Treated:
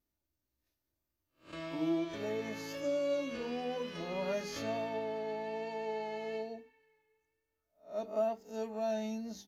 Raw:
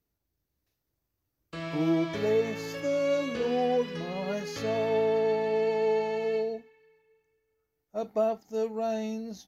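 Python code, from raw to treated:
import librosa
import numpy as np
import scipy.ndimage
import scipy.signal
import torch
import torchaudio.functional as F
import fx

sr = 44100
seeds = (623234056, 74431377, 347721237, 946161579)

y = fx.spec_swells(x, sr, rise_s=0.31)
y = fx.vibrato(y, sr, rate_hz=1.1, depth_cents=20.0)
y = fx.hum_notches(y, sr, base_hz=50, count=10)
y = fx.rider(y, sr, range_db=4, speed_s=0.5)
y = y + 0.43 * np.pad(y, (int(3.3 * sr / 1000.0), 0))[:len(y)]
y = y * 10.0 ** (-7.5 / 20.0)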